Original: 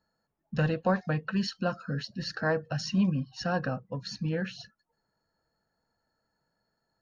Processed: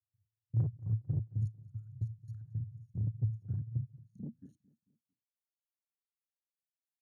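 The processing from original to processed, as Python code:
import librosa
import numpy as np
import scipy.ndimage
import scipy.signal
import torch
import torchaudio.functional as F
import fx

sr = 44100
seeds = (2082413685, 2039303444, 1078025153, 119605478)

y = fx.local_reverse(x, sr, ms=33.0)
y = scipy.signal.sosfilt(scipy.signal.cheby2(4, 40, [200.0, 5300.0], 'bandstop', fs=sr, output='sos'), y)
y = fx.peak_eq(y, sr, hz=220.0, db=12.0, octaves=0.4)
y = fx.step_gate(y, sr, bpm=112, pattern='.x..x.x.x', floor_db=-24.0, edge_ms=4.5)
y = fx.peak_eq(y, sr, hz=100.0, db=12.5, octaves=1.9)
y = fx.tube_stage(y, sr, drive_db=37.0, bias=0.6)
y = fx.filter_sweep_highpass(y, sr, from_hz=110.0, to_hz=2500.0, start_s=3.7, end_s=6.31, q=8.0)
y = fx.echo_feedback(y, sr, ms=223, feedback_pct=43, wet_db=-21)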